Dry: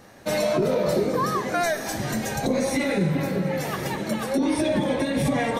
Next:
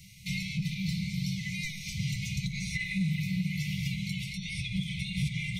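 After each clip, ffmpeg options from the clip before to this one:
-filter_complex "[0:a]afftfilt=real='re*(1-between(b*sr/4096,200,2000))':imag='im*(1-between(b*sr/4096,200,2000))':win_size=4096:overlap=0.75,acrossover=split=120|1800|5400[a][b][c][d];[a]acompressor=threshold=-41dB:ratio=4[e];[b]acompressor=threshold=-34dB:ratio=4[f];[c]acompressor=threshold=-43dB:ratio=4[g];[d]acompressor=threshold=-60dB:ratio=4[h];[e][f][g][h]amix=inputs=4:normalize=0,volume=3dB"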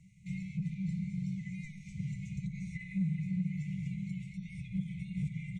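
-af "firequalizer=gain_entry='entry(110,0);entry(170,7);entry(1400,2);entry(3100,-15);entry(4900,-20);entry(7300,-4);entry(12000,-27)':delay=0.05:min_phase=1,volume=-9dB"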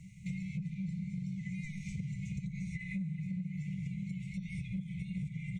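-af "acompressor=threshold=-44dB:ratio=6,volume=8dB"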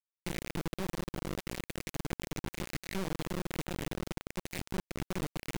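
-af "acrusher=bits=3:dc=4:mix=0:aa=0.000001,volume=2dB"

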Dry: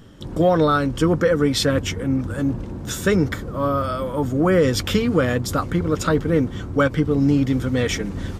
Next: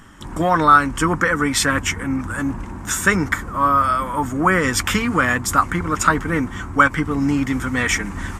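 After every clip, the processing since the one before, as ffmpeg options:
-af "equalizer=f=125:t=o:w=1:g=-8,equalizer=f=500:t=o:w=1:g=-12,equalizer=f=1k:t=o:w=1:g=9,equalizer=f=2k:t=o:w=1:g=7,equalizer=f=4k:t=o:w=1:g=-8,equalizer=f=8k:t=o:w=1:g=8,volume=3dB"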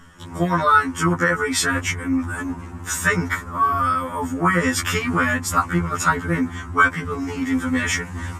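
-af "afftfilt=real='re*2*eq(mod(b,4),0)':imag='im*2*eq(mod(b,4),0)':win_size=2048:overlap=0.75"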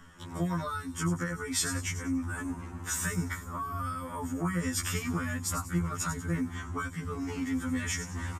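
-filter_complex "[0:a]acrossover=split=230|5000[a][b][c];[b]acompressor=threshold=-29dB:ratio=6[d];[c]aecho=1:1:95|190|285|380:0.447|0.17|0.0645|0.0245[e];[a][d][e]amix=inputs=3:normalize=0,volume=-6.5dB"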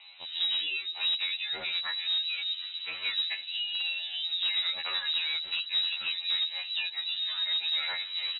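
-filter_complex "[0:a]asplit=2[a][b];[b]aeval=exprs='(mod(18.8*val(0)+1,2)-1)/18.8':c=same,volume=-11dB[c];[a][c]amix=inputs=2:normalize=0,lowpass=f=3.4k:t=q:w=0.5098,lowpass=f=3.4k:t=q:w=0.6013,lowpass=f=3.4k:t=q:w=0.9,lowpass=f=3.4k:t=q:w=2.563,afreqshift=-4000"

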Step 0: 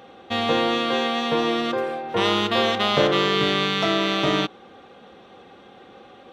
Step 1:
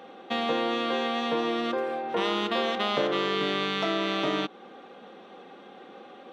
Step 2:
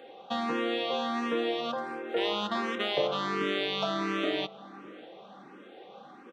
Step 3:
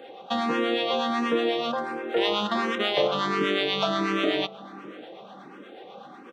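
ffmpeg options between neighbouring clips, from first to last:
-af "highpass=f=180:w=0.5412,highpass=f=180:w=1.3066,highshelf=f=4k:g=-6,acompressor=threshold=-28dB:ratio=2"
-filter_complex "[0:a]asplit=2[a][b];[b]adelay=598,lowpass=f=1.9k:p=1,volume=-19dB,asplit=2[c][d];[d]adelay=598,lowpass=f=1.9k:p=1,volume=0.53,asplit=2[e][f];[f]adelay=598,lowpass=f=1.9k:p=1,volume=0.53,asplit=2[g][h];[h]adelay=598,lowpass=f=1.9k:p=1,volume=0.53[i];[a][c][e][g][i]amix=inputs=5:normalize=0,asplit=2[j][k];[k]afreqshift=1.4[l];[j][l]amix=inputs=2:normalize=1"
-filter_complex "[0:a]acrossover=split=650[a][b];[a]aeval=exprs='val(0)*(1-0.5/2+0.5/2*cos(2*PI*8.2*n/s))':c=same[c];[b]aeval=exprs='val(0)*(1-0.5/2-0.5/2*cos(2*PI*8.2*n/s))':c=same[d];[c][d]amix=inputs=2:normalize=0,volume=7.5dB"

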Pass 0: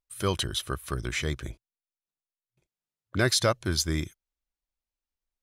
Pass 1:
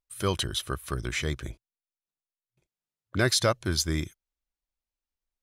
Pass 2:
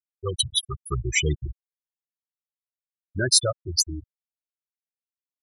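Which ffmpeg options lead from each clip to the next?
-af anull
-af "aemphasis=mode=production:type=75fm,dynaudnorm=f=200:g=3:m=10dB,afftfilt=real='re*gte(hypot(re,im),0.316)':imag='im*gte(hypot(re,im),0.316)':win_size=1024:overlap=0.75,volume=-1.5dB"

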